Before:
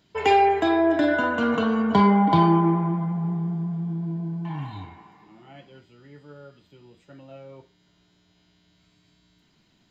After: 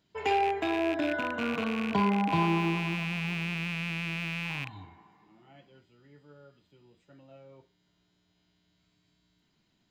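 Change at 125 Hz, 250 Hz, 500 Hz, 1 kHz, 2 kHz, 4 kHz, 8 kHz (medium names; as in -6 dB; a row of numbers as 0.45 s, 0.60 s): -9.0 dB, -9.0 dB, -9.0 dB, -9.0 dB, -3.0 dB, -1.5 dB, no reading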